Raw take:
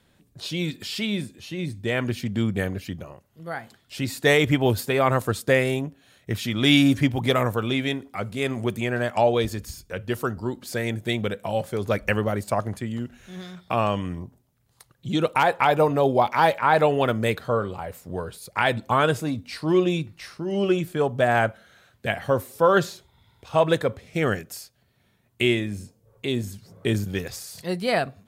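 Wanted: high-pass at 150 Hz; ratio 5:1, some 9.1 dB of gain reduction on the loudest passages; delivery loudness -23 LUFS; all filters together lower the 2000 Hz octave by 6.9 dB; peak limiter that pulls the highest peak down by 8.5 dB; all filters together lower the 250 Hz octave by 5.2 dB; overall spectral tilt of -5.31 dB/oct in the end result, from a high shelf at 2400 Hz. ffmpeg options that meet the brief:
-af "highpass=150,equalizer=f=250:t=o:g=-6,equalizer=f=2k:t=o:g=-7,highshelf=f=2.4k:g=-3.5,acompressor=threshold=-26dB:ratio=5,volume=11.5dB,alimiter=limit=-10dB:level=0:latency=1"

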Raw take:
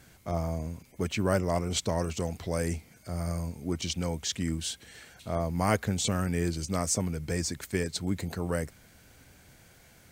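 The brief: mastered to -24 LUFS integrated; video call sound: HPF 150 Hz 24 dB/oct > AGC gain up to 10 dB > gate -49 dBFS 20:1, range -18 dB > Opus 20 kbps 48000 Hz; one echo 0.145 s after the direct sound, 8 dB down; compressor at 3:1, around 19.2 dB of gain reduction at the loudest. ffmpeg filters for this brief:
-af "acompressor=threshold=-48dB:ratio=3,highpass=f=150:w=0.5412,highpass=f=150:w=1.3066,aecho=1:1:145:0.398,dynaudnorm=m=10dB,agate=range=-18dB:threshold=-49dB:ratio=20,volume=23.5dB" -ar 48000 -c:a libopus -b:a 20k

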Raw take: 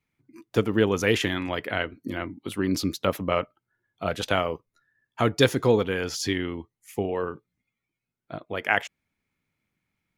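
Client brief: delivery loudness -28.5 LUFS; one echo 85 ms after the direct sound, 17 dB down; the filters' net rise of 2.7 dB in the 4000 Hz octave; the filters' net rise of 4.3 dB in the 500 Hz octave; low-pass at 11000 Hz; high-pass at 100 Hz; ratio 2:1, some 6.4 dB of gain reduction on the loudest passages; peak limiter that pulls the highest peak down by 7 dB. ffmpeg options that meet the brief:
-af "highpass=100,lowpass=11k,equalizer=f=500:t=o:g=5,equalizer=f=4k:t=o:g=3.5,acompressor=threshold=-23dB:ratio=2,alimiter=limit=-14.5dB:level=0:latency=1,aecho=1:1:85:0.141,volume=0.5dB"

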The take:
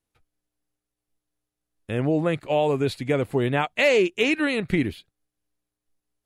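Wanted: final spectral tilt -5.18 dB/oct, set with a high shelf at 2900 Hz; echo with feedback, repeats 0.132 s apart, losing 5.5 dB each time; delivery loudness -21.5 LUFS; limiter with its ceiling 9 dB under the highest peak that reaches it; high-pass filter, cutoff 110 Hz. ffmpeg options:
-af "highpass=110,highshelf=f=2.9k:g=-5.5,alimiter=limit=-17.5dB:level=0:latency=1,aecho=1:1:132|264|396|528|660|792|924:0.531|0.281|0.149|0.079|0.0419|0.0222|0.0118,volume=5dB"

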